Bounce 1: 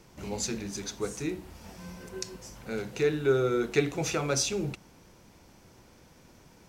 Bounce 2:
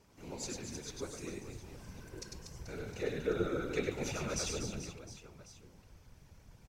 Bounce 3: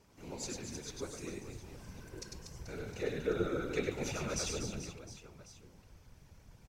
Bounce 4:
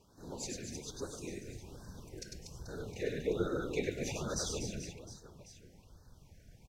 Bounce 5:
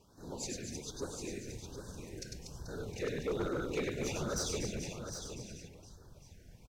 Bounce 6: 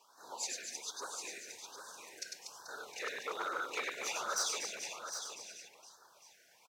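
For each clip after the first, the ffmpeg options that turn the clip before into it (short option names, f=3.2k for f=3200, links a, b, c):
-af "aecho=1:1:100|240|436|710.4|1095:0.631|0.398|0.251|0.158|0.1,asubboost=boost=7.5:cutoff=75,afftfilt=real='hypot(re,im)*cos(2*PI*random(0))':imag='hypot(re,im)*sin(2*PI*random(1))':win_size=512:overlap=0.75,volume=-4dB"
-af anull
-af "afftfilt=real='re*(1-between(b*sr/1024,980*pow(2600/980,0.5+0.5*sin(2*PI*1.2*pts/sr))/1.41,980*pow(2600/980,0.5+0.5*sin(2*PI*1.2*pts/sr))*1.41))':imag='im*(1-between(b*sr/1024,980*pow(2600/980,0.5+0.5*sin(2*PI*1.2*pts/sr))/1.41,980*pow(2600/980,0.5+0.5*sin(2*PI*1.2*pts/sr))*1.41))':win_size=1024:overlap=0.75"
-filter_complex "[0:a]volume=31dB,asoftclip=hard,volume=-31dB,asplit=2[a][b];[b]aecho=0:1:757:0.398[c];[a][c]amix=inputs=2:normalize=0,volume=1dB"
-af "highpass=f=990:t=q:w=1.6,volume=3dB"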